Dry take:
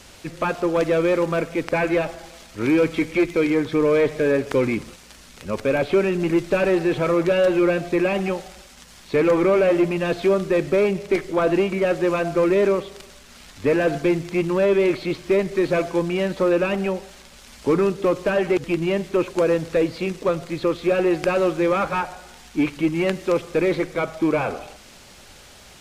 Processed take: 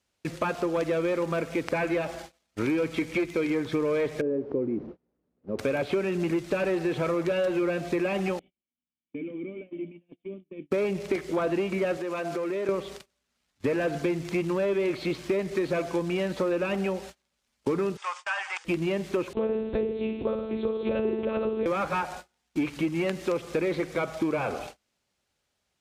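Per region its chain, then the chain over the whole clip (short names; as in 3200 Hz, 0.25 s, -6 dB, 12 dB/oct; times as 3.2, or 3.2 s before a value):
4.21–5.59 delta modulation 32 kbps, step -27.5 dBFS + synth low-pass 360 Hz, resonance Q 1.5 + tilt +3 dB/oct
8.39–10.71 vocal tract filter i + low shelf 130 Hz -5.5 dB + resonator 100 Hz, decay 1.9 s, mix 50%
11.97–12.69 HPF 220 Hz + compressor, threshold -27 dBFS
17.97–18.65 Chebyshev band-pass 850–8600 Hz, order 4 + notch 4100 Hz, Q 6.9
19.33–21.66 bell 1900 Hz -13 dB 1.8 oct + flutter echo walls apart 9.3 m, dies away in 0.7 s + monotone LPC vocoder at 8 kHz 220 Hz
whole clip: HPF 51 Hz; gate -38 dBFS, range -32 dB; compressor 4:1, threshold -25 dBFS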